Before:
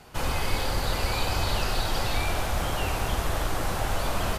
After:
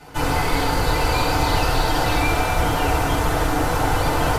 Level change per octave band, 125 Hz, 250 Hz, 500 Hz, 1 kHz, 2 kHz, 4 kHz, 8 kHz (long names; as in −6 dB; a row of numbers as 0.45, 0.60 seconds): +7.5, +11.0, +9.0, +10.0, +8.0, +4.5, +5.0 decibels